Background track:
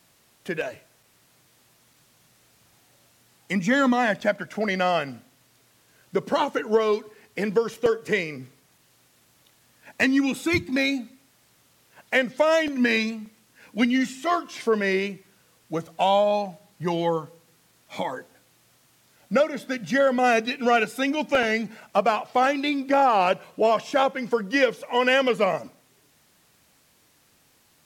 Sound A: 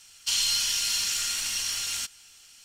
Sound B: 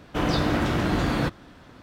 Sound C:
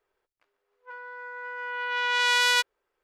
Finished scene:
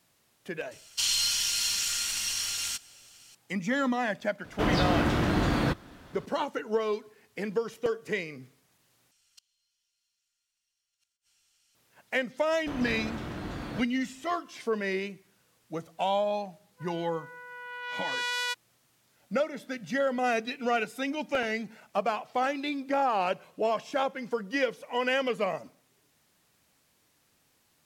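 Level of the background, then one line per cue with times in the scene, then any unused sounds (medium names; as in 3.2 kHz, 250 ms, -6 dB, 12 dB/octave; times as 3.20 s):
background track -7.5 dB
0.71 s: add A -1.5 dB
4.44 s: add B -2 dB
9.11 s: replace with A -17.5 dB + inverted gate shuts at -21 dBFS, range -36 dB
12.52 s: add B -13.5 dB
15.92 s: add C -9 dB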